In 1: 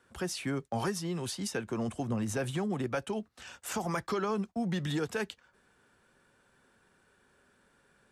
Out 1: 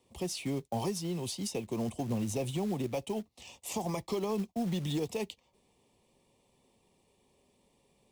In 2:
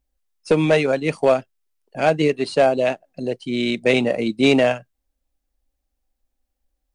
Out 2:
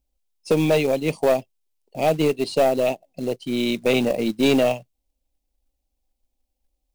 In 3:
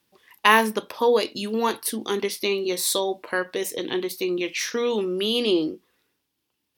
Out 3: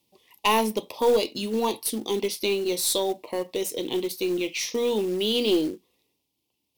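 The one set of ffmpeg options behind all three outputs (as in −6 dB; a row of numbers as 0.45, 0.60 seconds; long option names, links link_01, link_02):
-af "asuperstop=centerf=1500:order=4:qfactor=1.2,aeval=exprs='(tanh(3.16*val(0)+0.2)-tanh(0.2))/3.16':channel_layout=same,acrusher=bits=5:mode=log:mix=0:aa=0.000001"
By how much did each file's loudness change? −1.0, −2.0, −2.0 LU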